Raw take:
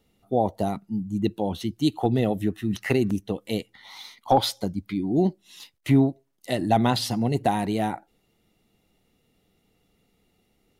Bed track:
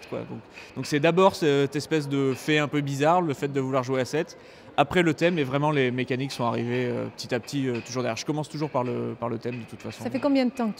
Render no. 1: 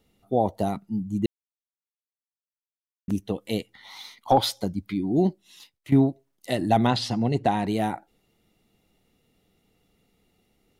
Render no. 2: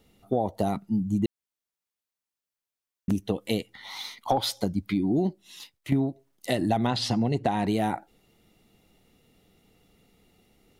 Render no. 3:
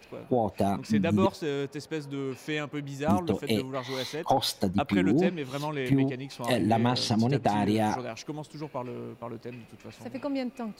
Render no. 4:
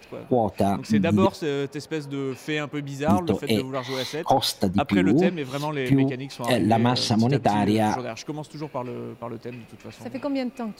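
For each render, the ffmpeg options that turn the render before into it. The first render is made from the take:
ffmpeg -i in.wav -filter_complex "[0:a]asettb=1/sr,asplit=3[link_01][link_02][link_03];[link_01]atrim=end=6.874[link_04];[link_02]atrim=start=6.87:end=7.67,asetpts=PTS-STARTPTS,afade=type=in:duration=0.004:curve=qsin,afade=type=out:start_time=0.796:duration=0.004:curve=qsin,lowpass=6100[link_05];[link_03]atrim=start=7.666[link_06];[link_04][link_05]acrossfade=duration=0.004:curve1=hsin:curve2=qsin[link_07];[link_07][link_06]acrossfade=duration=0.004:curve1=qsin:curve2=hsin,asplit=4[link_08][link_09][link_10][link_11];[link_08]atrim=end=1.26,asetpts=PTS-STARTPTS,afade=type=out:start_time=1.256:duration=0.004:curve=hsin[link_12];[link_09]atrim=start=1.26:end=3.08,asetpts=PTS-STARTPTS,volume=0[link_13];[link_10]atrim=start=3.08:end=5.92,asetpts=PTS-STARTPTS,afade=type=in:duration=0.004:curve=hsin,afade=type=out:start_time=2.21:duration=0.63:silence=0.211349[link_14];[link_11]atrim=start=5.92,asetpts=PTS-STARTPTS,afade=type=in:duration=0.004:curve=hsin:silence=0.211349[link_15];[link_12][link_13][link_14][link_15]concat=n=4:v=0:a=1" out.wav
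ffmpeg -i in.wav -filter_complex "[0:a]asplit=2[link_01][link_02];[link_02]alimiter=limit=-18dB:level=0:latency=1:release=490,volume=-2.5dB[link_03];[link_01][link_03]amix=inputs=2:normalize=0,acompressor=threshold=-21dB:ratio=6" out.wav
ffmpeg -i in.wav -i bed.wav -filter_complex "[1:a]volume=-9dB[link_01];[0:a][link_01]amix=inputs=2:normalize=0" out.wav
ffmpeg -i in.wav -af "volume=4.5dB" out.wav

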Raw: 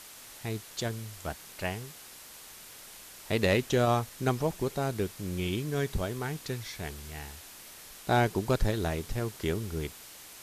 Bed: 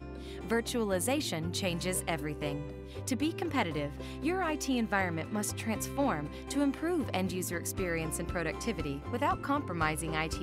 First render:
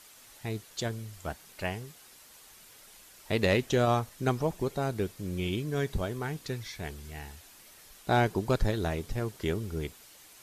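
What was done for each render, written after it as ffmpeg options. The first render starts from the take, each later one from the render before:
ffmpeg -i in.wav -af "afftdn=noise_reduction=7:noise_floor=-49" out.wav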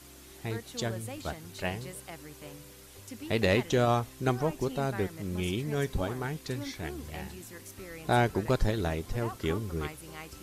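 ffmpeg -i in.wav -i bed.wav -filter_complex "[1:a]volume=-11.5dB[link_01];[0:a][link_01]amix=inputs=2:normalize=0" out.wav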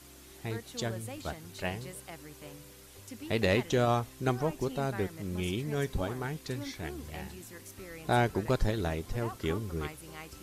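ffmpeg -i in.wav -af "volume=-1.5dB" out.wav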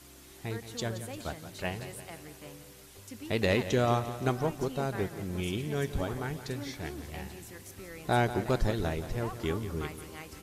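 ffmpeg -i in.wav -af "aecho=1:1:174|348|522|696|870|1044:0.237|0.13|0.0717|0.0395|0.0217|0.0119" out.wav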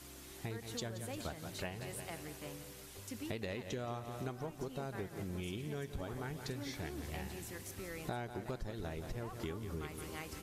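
ffmpeg -i in.wav -af "acompressor=threshold=-38dB:ratio=10" out.wav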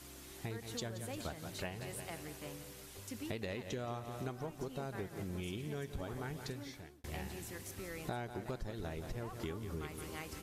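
ffmpeg -i in.wav -filter_complex "[0:a]asplit=2[link_01][link_02];[link_01]atrim=end=7.04,asetpts=PTS-STARTPTS,afade=type=out:start_time=6.41:duration=0.63[link_03];[link_02]atrim=start=7.04,asetpts=PTS-STARTPTS,afade=type=in:duration=0.004:curve=hsin[link_04];[link_03][link_04]concat=n=2:v=0:a=1" out.wav

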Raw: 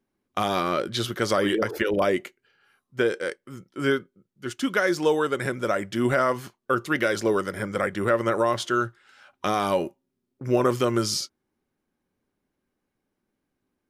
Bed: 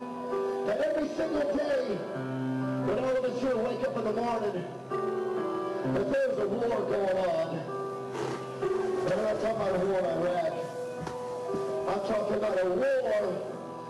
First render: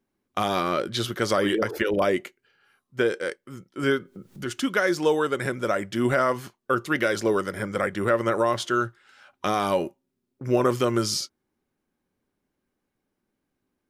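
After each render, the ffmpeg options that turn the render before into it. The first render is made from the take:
ffmpeg -i in.wav -filter_complex "[0:a]asettb=1/sr,asplit=3[link_01][link_02][link_03];[link_01]atrim=end=3.834[link_04];[link_02]atrim=start=3.83:end=4.61,asetpts=PTS-STARTPTS,afade=type=in:duration=0.004:curve=qsin,afade=type=out:start_time=0.776:duration=0.004:curve=qsin,acompressor=mode=upward:threshold=-24dB:ratio=2.5:attack=3.2:release=140:knee=2.83:detection=peak[link_05];[link_03]atrim=start=4.606[link_06];[link_04][link_05]acrossfade=duration=0.004:curve1=hsin:curve2=qsin[link_07];[link_07][link_06]acrossfade=duration=0.004:curve1=qsin:curve2=hsin" out.wav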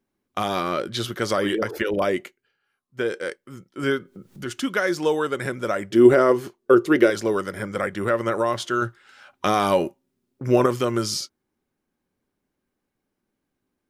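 ffmpeg -i in.wav -filter_complex "[0:a]asettb=1/sr,asplit=3[link_01][link_02][link_03];[link_01]atrim=end=5.904[link_04];[link_02]atrim=start=5.9:end=7.1,asetpts=PTS-STARTPTS,afade=type=in:duration=0.004:curve=qsin,afade=type=out:start_time=1.196:duration=0.004:curve=qsin,equalizer=frequency=380:width=1.6:gain=14.5[link_05];[link_03]atrim=start=7.096[link_06];[link_04][link_05]acrossfade=duration=0.004:curve1=hsin:curve2=qsin[link_07];[link_07][link_06]acrossfade=duration=0.004:curve1=qsin:curve2=hsin,asplit=5[link_08][link_09][link_10][link_11][link_12];[link_08]atrim=end=2.6,asetpts=PTS-STARTPTS,afade=type=out:start_time=2.23:duration=0.37:silence=0.281838[link_13];[link_09]atrim=start=2.6:end=2.79,asetpts=PTS-STARTPTS,volume=-11dB[link_14];[link_10]atrim=start=2.79:end=8.822,asetpts=PTS-STARTPTS,afade=type=in:duration=0.37:silence=0.281838[link_15];[link_11]atrim=start=8.818:end=10.662,asetpts=PTS-STARTPTS,volume=4dB[link_16];[link_12]atrim=start=10.658[link_17];[link_13][link_14][link_15]concat=n=3:v=0:a=1[link_18];[link_18][link_16]acrossfade=duration=0.004:curve1=hsin:curve2=hsin[link_19];[link_19][link_17]acrossfade=duration=0.004:curve1=hsin:curve2=hsin" out.wav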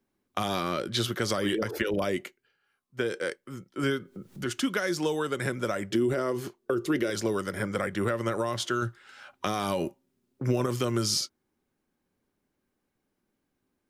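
ffmpeg -i in.wav -filter_complex "[0:a]alimiter=limit=-12dB:level=0:latency=1:release=74,acrossover=split=220|3000[link_01][link_02][link_03];[link_02]acompressor=threshold=-27dB:ratio=6[link_04];[link_01][link_04][link_03]amix=inputs=3:normalize=0" out.wav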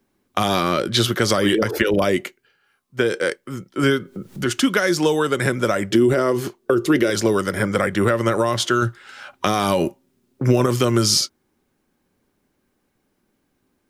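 ffmpeg -i in.wav -af "volume=10dB,alimiter=limit=-3dB:level=0:latency=1" out.wav

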